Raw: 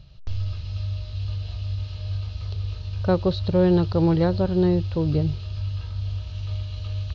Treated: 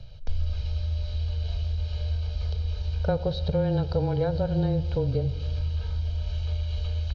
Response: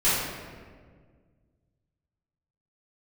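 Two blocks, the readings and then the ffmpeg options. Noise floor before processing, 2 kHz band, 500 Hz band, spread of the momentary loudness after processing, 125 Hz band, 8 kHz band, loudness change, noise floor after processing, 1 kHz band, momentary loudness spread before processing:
-35 dBFS, -4.5 dB, -4.5 dB, 5 LU, -2.0 dB, n/a, -3.5 dB, -33 dBFS, -4.5 dB, 11 LU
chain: -filter_complex "[0:a]equalizer=f=470:t=o:w=0.39:g=13,aecho=1:1:1.3:0.76,acompressor=threshold=-25dB:ratio=3,afreqshift=-18,asplit=2[a][b];[1:a]atrim=start_sample=2205[c];[b][c]afir=irnorm=-1:irlink=0,volume=-28dB[d];[a][d]amix=inputs=2:normalize=0"

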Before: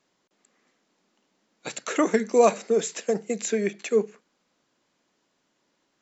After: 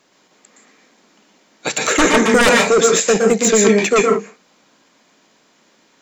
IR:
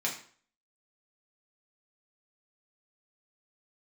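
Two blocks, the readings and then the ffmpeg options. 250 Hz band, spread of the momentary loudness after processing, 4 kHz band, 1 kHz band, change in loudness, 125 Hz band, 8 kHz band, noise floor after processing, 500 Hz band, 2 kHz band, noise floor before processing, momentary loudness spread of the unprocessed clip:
+11.0 dB, 9 LU, +19.0 dB, +11.0 dB, +11.0 dB, +13.5 dB, n/a, -57 dBFS, +9.0 dB, +18.5 dB, -73 dBFS, 16 LU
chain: -filter_complex "[0:a]lowshelf=f=170:g=-5.5,aeval=exprs='0.422*sin(PI/2*3.98*val(0)/0.422)':c=same,asplit=2[a][b];[1:a]atrim=start_sample=2205,afade=t=out:st=0.13:d=0.01,atrim=end_sample=6174,adelay=115[c];[b][c]afir=irnorm=-1:irlink=0,volume=-5.5dB[d];[a][d]amix=inputs=2:normalize=0,volume=-1.5dB"

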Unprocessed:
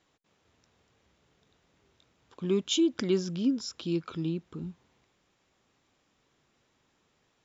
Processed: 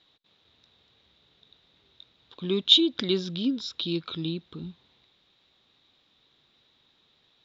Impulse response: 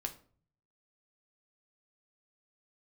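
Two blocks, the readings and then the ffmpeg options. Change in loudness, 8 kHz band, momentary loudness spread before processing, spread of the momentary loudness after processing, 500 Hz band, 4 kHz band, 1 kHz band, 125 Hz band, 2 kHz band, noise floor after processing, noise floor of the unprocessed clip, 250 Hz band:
+5.5 dB, n/a, 14 LU, 21 LU, 0.0 dB, +13.5 dB, +1.0 dB, 0.0 dB, +4.0 dB, -67 dBFS, -73 dBFS, 0.0 dB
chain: -af "lowpass=f=3.8k:t=q:w=8.7"

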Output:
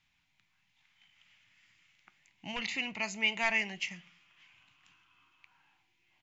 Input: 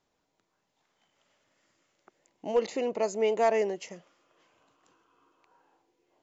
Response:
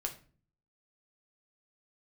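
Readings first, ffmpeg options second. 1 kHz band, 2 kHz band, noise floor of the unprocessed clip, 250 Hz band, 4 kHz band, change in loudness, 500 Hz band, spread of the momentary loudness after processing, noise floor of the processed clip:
-8.0 dB, +9.5 dB, -79 dBFS, -5.0 dB, +9.0 dB, -4.0 dB, -18.0 dB, 13 LU, -75 dBFS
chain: -filter_complex "[0:a]firequalizer=gain_entry='entry(130,0);entry(450,-29);entry(820,-10);entry(1200,-8);entry(2300,9);entry(4400,-2);entry(7300,-7)':delay=0.05:min_phase=1,asplit=2[a][b];[1:a]atrim=start_sample=2205[c];[b][c]afir=irnorm=-1:irlink=0,volume=-7dB[d];[a][d]amix=inputs=2:normalize=0,volume=1.5dB"

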